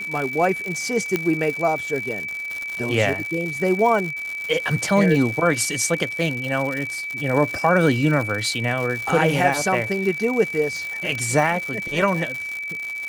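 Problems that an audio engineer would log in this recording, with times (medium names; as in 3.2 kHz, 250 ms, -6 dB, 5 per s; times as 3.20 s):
crackle 180 per s -26 dBFS
whine 2.3 kHz -27 dBFS
1.16 s: pop -8 dBFS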